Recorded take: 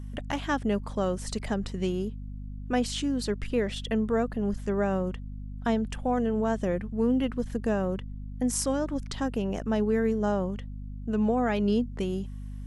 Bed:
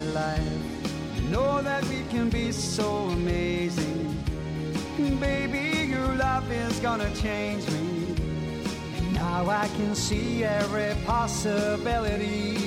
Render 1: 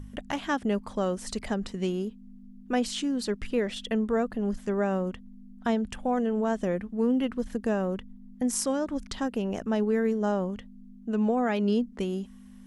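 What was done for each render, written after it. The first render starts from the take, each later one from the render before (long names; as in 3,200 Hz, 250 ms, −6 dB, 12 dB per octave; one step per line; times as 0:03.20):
hum removal 50 Hz, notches 3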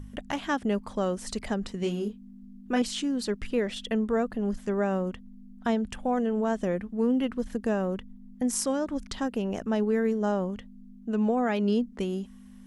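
0:01.79–0:02.82: double-tracking delay 29 ms −5 dB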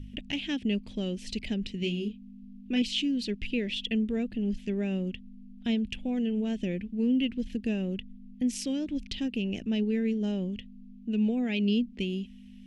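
drawn EQ curve 300 Hz 0 dB, 1,200 Hz −25 dB, 2,600 Hz +9 dB, 9,100 Hz −12 dB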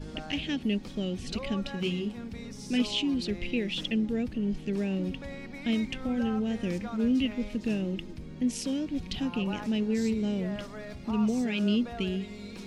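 mix in bed −15 dB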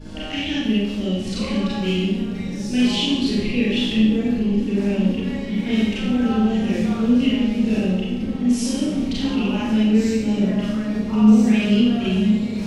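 echo whose low-pass opens from repeat to repeat 509 ms, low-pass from 200 Hz, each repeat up 1 octave, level −6 dB
four-comb reverb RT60 0.9 s, combs from 29 ms, DRR −8 dB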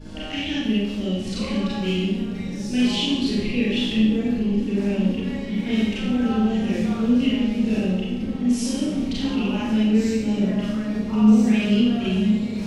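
level −2 dB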